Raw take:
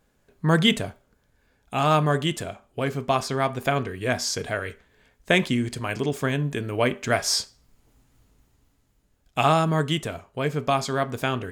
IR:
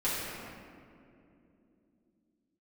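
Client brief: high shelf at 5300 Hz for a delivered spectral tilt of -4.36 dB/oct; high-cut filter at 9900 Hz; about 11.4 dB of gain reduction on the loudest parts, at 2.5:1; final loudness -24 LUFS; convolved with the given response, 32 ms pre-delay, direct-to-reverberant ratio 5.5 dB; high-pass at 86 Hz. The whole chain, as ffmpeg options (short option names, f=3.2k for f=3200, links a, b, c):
-filter_complex "[0:a]highpass=86,lowpass=9.9k,highshelf=f=5.3k:g=6,acompressor=threshold=-32dB:ratio=2.5,asplit=2[a][b];[1:a]atrim=start_sample=2205,adelay=32[c];[b][c]afir=irnorm=-1:irlink=0,volume=-14.5dB[d];[a][d]amix=inputs=2:normalize=0,volume=8dB"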